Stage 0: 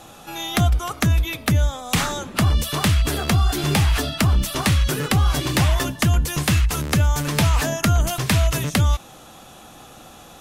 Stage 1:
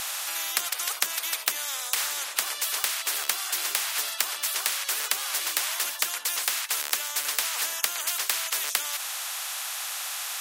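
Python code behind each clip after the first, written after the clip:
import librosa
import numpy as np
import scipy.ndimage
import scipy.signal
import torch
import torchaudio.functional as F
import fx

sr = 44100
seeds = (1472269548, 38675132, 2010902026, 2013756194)

y = scipy.signal.sosfilt(scipy.signal.butter(4, 1300.0, 'highpass', fs=sr, output='sos'), x)
y = fx.rider(y, sr, range_db=5, speed_s=0.5)
y = fx.spectral_comp(y, sr, ratio=4.0)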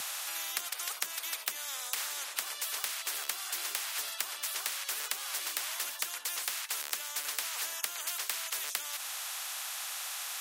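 y = fx.band_squash(x, sr, depth_pct=40)
y = F.gain(torch.from_numpy(y), -8.0).numpy()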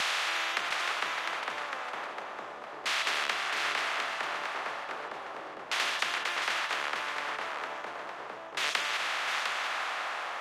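y = fx.bin_compress(x, sr, power=0.4)
y = fx.filter_lfo_lowpass(y, sr, shape='saw_down', hz=0.35, low_hz=480.0, high_hz=3500.0, q=0.76)
y = y + 10.0 ** (-6.0 / 20.0) * np.pad(y, (int(705 * sr / 1000.0), 0))[:len(y)]
y = F.gain(torch.from_numpy(y), 7.0).numpy()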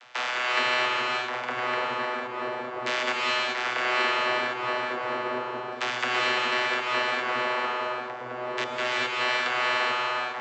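y = fx.step_gate(x, sr, bpm=106, pattern='.xxxxx...xxxx.xx', floor_db=-24.0, edge_ms=4.5)
y = fx.vocoder(y, sr, bands=32, carrier='saw', carrier_hz=124.0)
y = fx.rev_gated(y, sr, seeds[0], gate_ms=450, shape='rising', drr_db=-3.0)
y = F.gain(torch.from_numpy(y), 4.0).numpy()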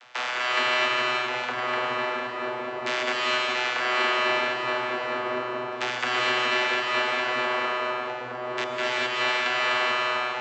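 y = x + 10.0 ** (-5.5 / 20.0) * np.pad(x, (int(253 * sr / 1000.0), 0))[:len(x)]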